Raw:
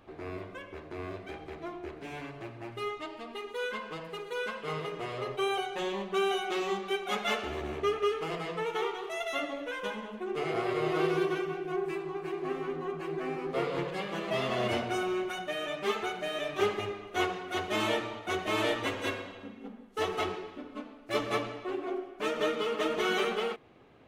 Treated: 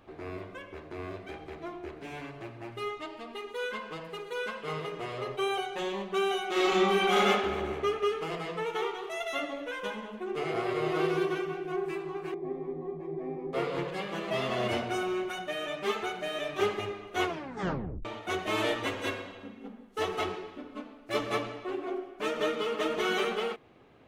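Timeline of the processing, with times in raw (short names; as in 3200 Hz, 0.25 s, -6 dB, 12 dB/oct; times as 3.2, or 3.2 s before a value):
6.51–7.22 reverb throw, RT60 1.9 s, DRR -8 dB
12.34–13.53 running mean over 31 samples
17.26 tape stop 0.79 s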